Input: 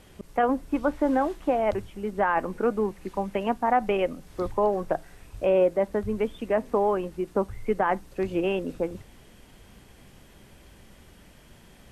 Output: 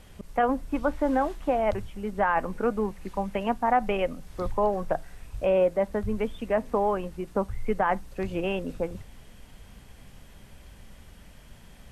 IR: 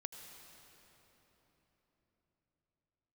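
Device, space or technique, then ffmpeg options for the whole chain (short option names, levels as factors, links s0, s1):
low shelf boost with a cut just above: -af "lowshelf=f=65:g=8,equalizer=f=350:t=o:w=0.57:g=-6"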